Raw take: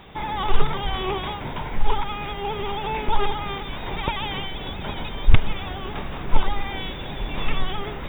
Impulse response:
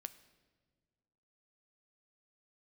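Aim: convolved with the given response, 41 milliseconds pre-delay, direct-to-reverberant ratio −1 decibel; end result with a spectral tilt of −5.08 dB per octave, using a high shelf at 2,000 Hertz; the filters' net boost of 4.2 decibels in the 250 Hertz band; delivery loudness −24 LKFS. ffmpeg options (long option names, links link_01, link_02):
-filter_complex "[0:a]equalizer=frequency=250:width_type=o:gain=6,highshelf=frequency=2000:gain=-7,asplit=2[link_01][link_02];[1:a]atrim=start_sample=2205,adelay=41[link_03];[link_02][link_03]afir=irnorm=-1:irlink=0,volume=5.5dB[link_04];[link_01][link_04]amix=inputs=2:normalize=0,volume=1dB"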